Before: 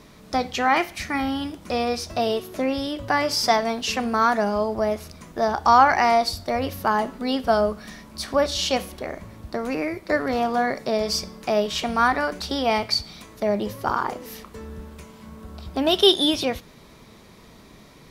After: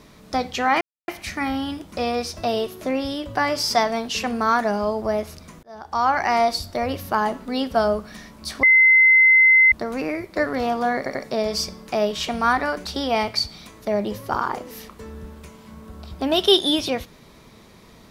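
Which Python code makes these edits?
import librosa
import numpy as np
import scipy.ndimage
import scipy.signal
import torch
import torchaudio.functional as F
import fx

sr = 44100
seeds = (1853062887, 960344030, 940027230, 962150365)

y = fx.edit(x, sr, fx.insert_silence(at_s=0.81, length_s=0.27),
    fx.fade_in_span(start_s=5.36, length_s=0.8),
    fx.bleep(start_s=8.36, length_s=1.09, hz=2060.0, db=-10.0),
    fx.stutter(start_s=10.7, slice_s=0.09, count=3), tone=tone)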